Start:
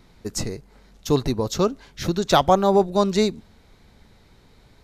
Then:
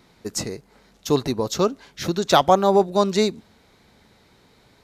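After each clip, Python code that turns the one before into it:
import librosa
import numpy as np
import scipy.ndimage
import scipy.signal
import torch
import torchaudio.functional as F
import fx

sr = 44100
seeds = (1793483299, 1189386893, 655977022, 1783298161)

y = fx.highpass(x, sr, hz=190.0, slope=6)
y = y * 10.0 ** (1.5 / 20.0)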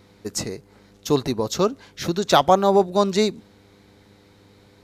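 y = fx.dmg_buzz(x, sr, base_hz=100.0, harmonics=5, level_db=-55.0, tilt_db=-2, odd_only=False)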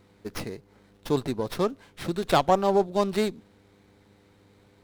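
y = fx.running_max(x, sr, window=5)
y = y * 10.0 ** (-5.5 / 20.0)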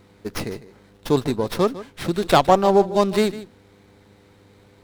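y = x + 10.0 ** (-16.0 / 20.0) * np.pad(x, (int(152 * sr / 1000.0), 0))[:len(x)]
y = y * 10.0 ** (6.0 / 20.0)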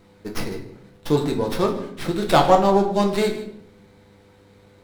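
y = fx.room_shoebox(x, sr, seeds[0], volume_m3=120.0, walls='mixed', distance_m=0.65)
y = y * 10.0 ** (-2.5 / 20.0)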